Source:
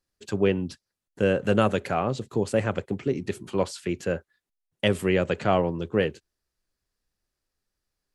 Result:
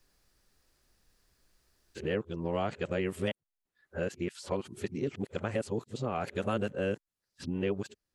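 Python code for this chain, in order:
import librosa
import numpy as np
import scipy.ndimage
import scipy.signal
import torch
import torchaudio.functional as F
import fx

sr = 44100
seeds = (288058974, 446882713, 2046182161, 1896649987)

y = np.flip(x).copy()
y = fx.band_squash(y, sr, depth_pct=70)
y = y * 10.0 ** (-9.0 / 20.0)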